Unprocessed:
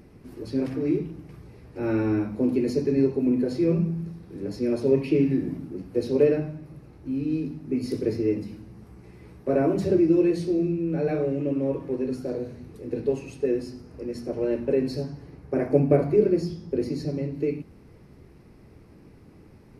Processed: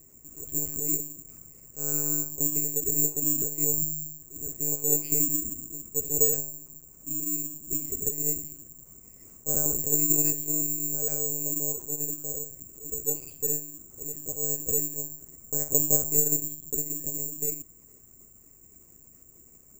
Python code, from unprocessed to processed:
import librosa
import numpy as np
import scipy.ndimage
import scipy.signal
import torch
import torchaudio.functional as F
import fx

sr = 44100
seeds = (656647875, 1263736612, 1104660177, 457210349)

y = fx.lpc_monotone(x, sr, seeds[0], pitch_hz=150.0, order=10)
y = (np.kron(scipy.signal.resample_poly(y, 1, 6), np.eye(6)[0]) * 6)[:len(y)]
y = y * librosa.db_to_amplitude(-11.5)